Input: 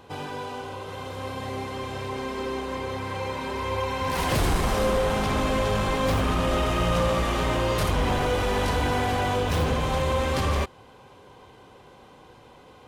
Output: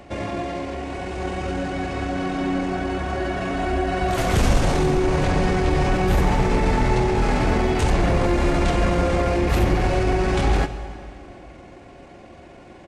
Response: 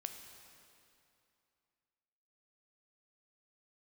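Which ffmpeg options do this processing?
-filter_complex "[0:a]asetrate=31183,aresample=44100,atempo=1.41421,acrossover=split=240[s0][s1];[s1]acompressor=threshold=0.0447:ratio=6[s2];[s0][s2]amix=inputs=2:normalize=0,asplit=2[s3][s4];[1:a]atrim=start_sample=2205,asetrate=48510,aresample=44100[s5];[s4][s5]afir=irnorm=-1:irlink=0,volume=1.88[s6];[s3][s6]amix=inputs=2:normalize=0"

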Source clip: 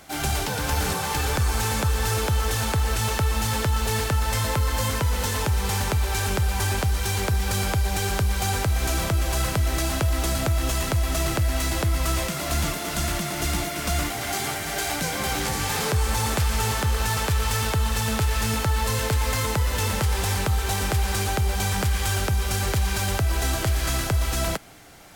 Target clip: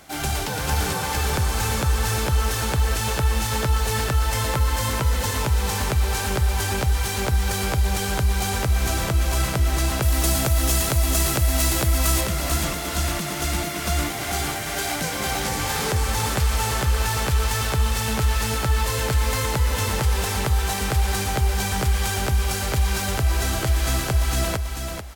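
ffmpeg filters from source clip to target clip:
-filter_complex "[0:a]asettb=1/sr,asplit=3[s0][s1][s2];[s0]atrim=end=10.024[s3];[s1]atrim=start=10.02:end=12.21,asetpts=PTS-STARTPTS,afade=t=in:d=0.004:c=qsin,afade=t=out:st=2.186:d=0.004:c=qsin,highshelf=f=5500:g=9.5[s4];[s2]atrim=start=12.206[s5];[s3][s4]acrossfade=d=0.004:c1=hsin:c2=qsin[s6];[s6][s5]acrossfade=d=0.004:c1=qsin:c2=hsin,aecho=1:1:439|878|1317:0.501|0.135|0.0365"

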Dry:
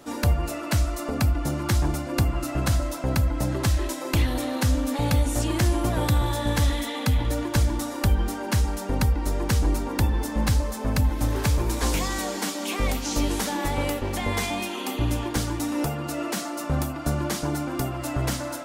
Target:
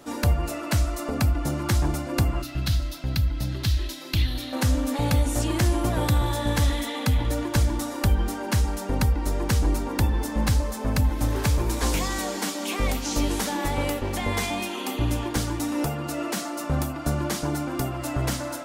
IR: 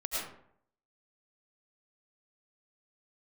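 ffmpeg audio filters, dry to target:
-filter_complex "[0:a]asettb=1/sr,asplit=3[s0][s1][s2];[s0]atrim=end=2.424[s3];[s1]atrim=start=2.42:end=4.53,asetpts=PTS-STARTPTS,afade=t=in:d=0.004:c=qsin,afade=t=out:st=2.106:d=0.004:c=qsin,equalizer=f=250:t=o:w=1:g=-4,equalizer=f=500:t=o:w=1:g=-11,equalizer=f=1000:t=o:w=1:g=-10,equalizer=f=2000:t=o:w=1:g=-3,equalizer=f=4000:t=o:w=1:g=8,equalizer=f=8000:t=o:w=1:g=-10[s4];[s2]atrim=start=4.526[s5];[s3][s4]acrossfade=d=0.004:c1=hsin:c2=qsin[s6];[s6][s5]acrossfade=d=0.004:c1=qsin:c2=hsin"

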